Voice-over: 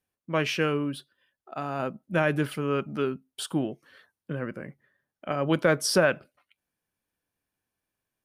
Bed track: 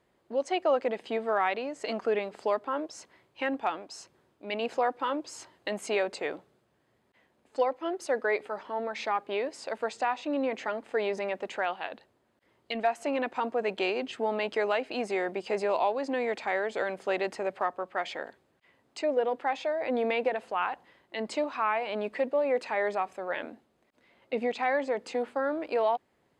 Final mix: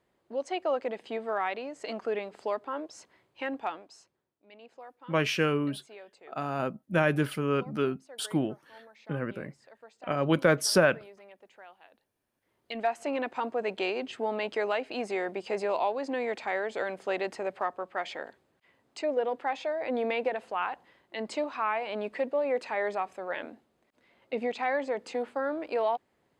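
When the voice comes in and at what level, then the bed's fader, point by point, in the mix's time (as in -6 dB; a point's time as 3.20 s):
4.80 s, -0.5 dB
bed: 3.68 s -3.5 dB
4.39 s -20.5 dB
11.92 s -20.5 dB
12.84 s -1.5 dB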